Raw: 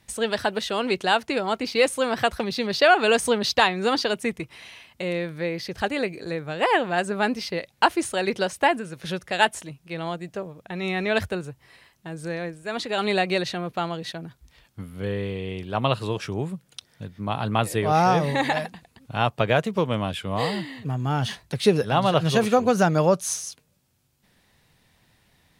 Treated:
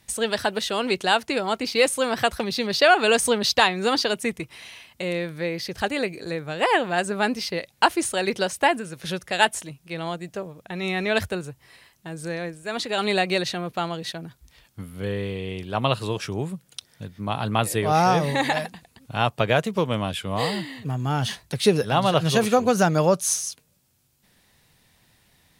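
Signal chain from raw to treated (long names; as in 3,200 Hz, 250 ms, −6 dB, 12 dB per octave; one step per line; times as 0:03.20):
high-shelf EQ 4,800 Hz +6.5 dB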